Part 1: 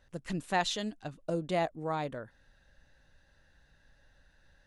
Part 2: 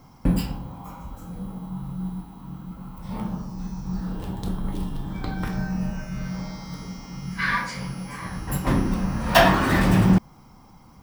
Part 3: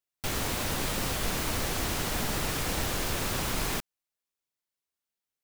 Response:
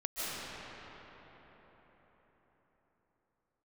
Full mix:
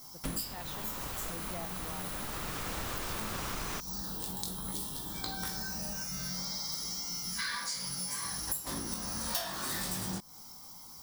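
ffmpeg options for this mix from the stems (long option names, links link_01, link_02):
-filter_complex "[0:a]volume=-13dB,asplit=2[link_01][link_02];[1:a]lowshelf=frequency=370:gain=-10,aexciter=amount=5.2:drive=7.4:freq=3700,flanger=delay=18:depth=2.6:speed=0.56,volume=-0.5dB[link_03];[2:a]equalizer=frequency=1200:width_type=o:width=0.77:gain=5.5,volume=-2dB[link_04];[link_02]apad=whole_len=239487[link_05];[link_04][link_05]sidechaincompress=threshold=-53dB:ratio=3:attack=12:release=1310[link_06];[link_01][link_03][link_06]amix=inputs=3:normalize=0,acompressor=threshold=-33dB:ratio=8"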